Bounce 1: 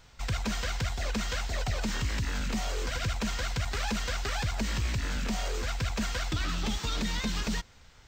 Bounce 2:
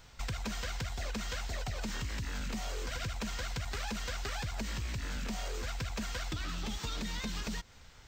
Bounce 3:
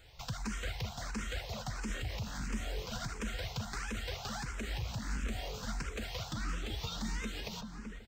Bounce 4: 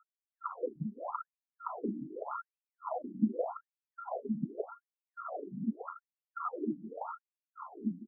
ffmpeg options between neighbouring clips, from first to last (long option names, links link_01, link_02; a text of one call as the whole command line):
ffmpeg -i in.wav -af "highshelf=frequency=11000:gain=4,acompressor=threshold=-34dB:ratio=6" out.wav
ffmpeg -i in.wav -filter_complex "[0:a]asplit=2[link_01][link_02];[link_02]adelay=381,lowpass=frequency=1300:poles=1,volume=-5dB,asplit=2[link_03][link_04];[link_04]adelay=381,lowpass=frequency=1300:poles=1,volume=0.4,asplit=2[link_05][link_06];[link_06]adelay=381,lowpass=frequency=1300:poles=1,volume=0.4,asplit=2[link_07][link_08];[link_08]adelay=381,lowpass=frequency=1300:poles=1,volume=0.4,asplit=2[link_09][link_10];[link_10]adelay=381,lowpass=frequency=1300:poles=1,volume=0.4[link_11];[link_01][link_03][link_05][link_07][link_09][link_11]amix=inputs=6:normalize=0,asplit=2[link_12][link_13];[link_13]afreqshift=1.5[link_14];[link_12][link_14]amix=inputs=2:normalize=1,volume=1dB" out.wav
ffmpeg -i in.wav -af "afftfilt=real='re*(1-between(b*sr/4096,1400,9800))':imag='im*(1-between(b*sr/4096,1400,9800))':win_size=4096:overlap=0.75,afftfilt=real='re*between(b*sr/1024,230*pow(3800/230,0.5+0.5*sin(2*PI*0.84*pts/sr))/1.41,230*pow(3800/230,0.5+0.5*sin(2*PI*0.84*pts/sr))*1.41)':imag='im*between(b*sr/1024,230*pow(3800/230,0.5+0.5*sin(2*PI*0.84*pts/sr))/1.41,230*pow(3800/230,0.5+0.5*sin(2*PI*0.84*pts/sr))*1.41)':win_size=1024:overlap=0.75,volume=14dB" out.wav